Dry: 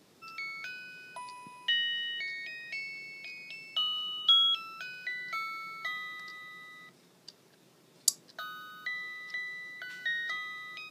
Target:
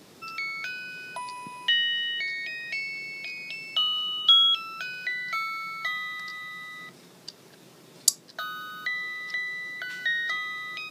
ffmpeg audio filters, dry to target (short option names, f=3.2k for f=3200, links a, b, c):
-filter_complex "[0:a]asettb=1/sr,asplit=3[a][b][c];[a]atrim=end=5.194[d];[b]atrim=start=5.19:end=6.78,asetpts=PTS-STARTPTS,afade=t=in:d=0.004:c=qsin,afade=t=out:st=1.586:d=0.004:c=qsin,equalizer=f=410:t=o:w=1.1:g=-5.5[e];[c]atrim=start=6.776[f];[d][e]acrossfade=d=0.004:c1=hsin:c2=qsin[g];[g][f]acrossfade=d=0.004:c1=qsin:c2=hsin,asplit=2[h][i];[i]acompressor=threshold=-48dB:ratio=6,volume=-2dB[j];[h][j]amix=inputs=2:normalize=0,volume=5dB"